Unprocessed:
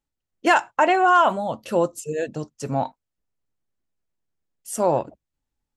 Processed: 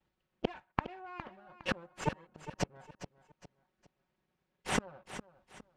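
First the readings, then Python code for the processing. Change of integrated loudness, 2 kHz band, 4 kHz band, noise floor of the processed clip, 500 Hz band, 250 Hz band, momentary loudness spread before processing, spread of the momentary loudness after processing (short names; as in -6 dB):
-18.0 dB, -16.5 dB, -9.5 dB, -84 dBFS, -19.5 dB, -13.0 dB, 15 LU, 17 LU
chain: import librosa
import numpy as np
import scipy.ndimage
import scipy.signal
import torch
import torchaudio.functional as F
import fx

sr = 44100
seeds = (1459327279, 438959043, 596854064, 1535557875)

y = fx.lower_of_two(x, sr, delay_ms=5.4)
y = scipy.signal.sosfilt(scipy.signal.butter(2, 3000.0, 'lowpass', fs=sr, output='sos'), y)
y = fx.gate_flip(y, sr, shuts_db=-27.0, range_db=-41)
y = fx.highpass(y, sr, hz=72.0, slope=6)
y = fx.echo_feedback(y, sr, ms=410, feedback_pct=33, wet_db=-12.5)
y = F.gain(torch.from_numpy(y), 11.0).numpy()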